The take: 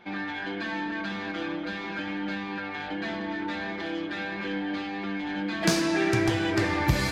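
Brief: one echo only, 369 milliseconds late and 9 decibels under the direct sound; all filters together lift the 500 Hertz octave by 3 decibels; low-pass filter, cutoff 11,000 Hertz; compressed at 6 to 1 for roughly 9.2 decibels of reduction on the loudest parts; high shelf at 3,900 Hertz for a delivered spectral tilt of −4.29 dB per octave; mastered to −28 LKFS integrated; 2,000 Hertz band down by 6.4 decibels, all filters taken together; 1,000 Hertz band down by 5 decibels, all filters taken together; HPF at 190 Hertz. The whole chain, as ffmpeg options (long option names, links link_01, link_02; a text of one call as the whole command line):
ffmpeg -i in.wav -af "highpass=190,lowpass=11000,equalizer=frequency=500:width_type=o:gain=7,equalizer=frequency=1000:width_type=o:gain=-8,equalizer=frequency=2000:width_type=o:gain=-4,highshelf=frequency=3900:gain=-7.5,acompressor=threshold=-30dB:ratio=6,aecho=1:1:369:0.355,volume=6.5dB" out.wav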